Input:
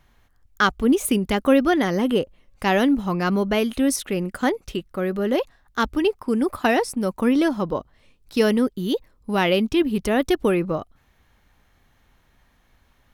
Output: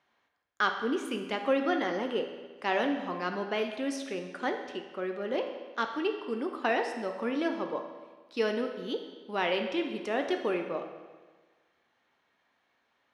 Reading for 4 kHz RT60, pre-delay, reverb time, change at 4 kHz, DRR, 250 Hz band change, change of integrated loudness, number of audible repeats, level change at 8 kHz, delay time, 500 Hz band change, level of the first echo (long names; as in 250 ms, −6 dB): 1.2 s, 12 ms, 1.4 s, −8.5 dB, 4.0 dB, −13.5 dB, −10.0 dB, no echo audible, −18.0 dB, no echo audible, −8.5 dB, no echo audible